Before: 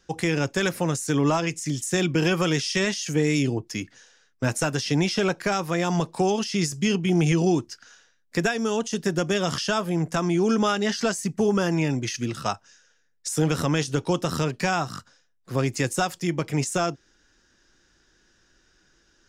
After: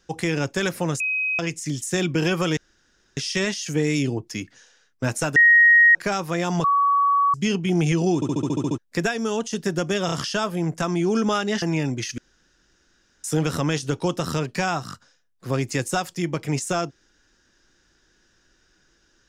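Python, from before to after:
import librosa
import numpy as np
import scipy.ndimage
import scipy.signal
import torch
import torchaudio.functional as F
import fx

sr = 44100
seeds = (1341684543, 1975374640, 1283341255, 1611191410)

y = fx.edit(x, sr, fx.bleep(start_s=1.0, length_s=0.39, hz=2530.0, db=-21.0),
    fx.insert_room_tone(at_s=2.57, length_s=0.6),
    fx.bleep(start_s=4.76, length_s=0.59, hz=1880.0, db=-10.0),
    fx.bleep(start_s=6.04, length_s=0.7, hz=1130.0, db=-15.5),
    fx.stutter_over(start_s=7.55, slice_s=0.07, count=9),
    fx.stutter(start_s=9.46, slice_s=0.03, count=3),
    fx.cut(start_s=10.96, length_s=0.71),
    fx.room_tone_fill(start_s=12.23, length_s=1.06), tone=tone)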